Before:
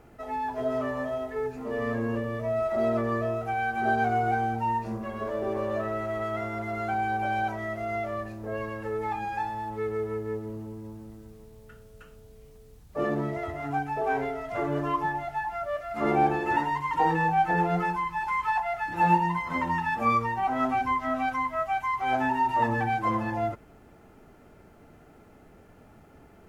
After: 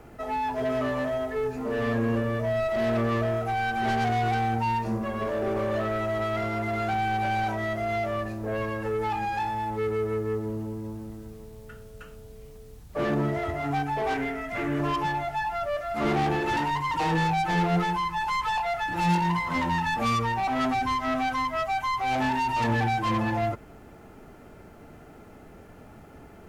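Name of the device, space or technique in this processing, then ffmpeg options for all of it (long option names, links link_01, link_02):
one-band saturation: -filter_complex "[0:a]acrossover=split=220|3400[link_01][link_02][link_03];[link_02]asoftclip=type=tanh:threshold=-30dB[link_04];[link_01][link_04][link_03]amix=inputs=3:normalize=0,asettb=1/sr,asplit=3[link_05][link_06][link_07];[link_05]atrim=end=14.144[link_08];[link_06]atrim=start=14.14:end=14.8,asetpts=PTS-STARTPTS,afade=type=in:duration=0.004:curve=qsin,afade=type=out:start_time=0.656:duration=0.004:curve=qsin,equalizer=frequency=125:width_type=o:width=1:gain=-6,equalizer=frequency=250:width_type=o:width=1:gain=5,equalizer=frequency=500:width_type=o:width=1:gain=-7,equalizer=frequency=1000:width_type=o:width=1:gain=-5,equalizer=frequency=2000:width_type=o:width=1:gain=6,equalizer=frequency=4000:width_type=o:width=1:gain=-5[link_09];[link_07]atrim=start=14.796[link_10];[link_08][link_09]acrossfade=duration=0.004:curve1=hsin:curve2=qsin[link_11];[link_11][link_10]acrossfade=duration=0.004:curve1=qsin:curve2=hsin,volume=5.5dB"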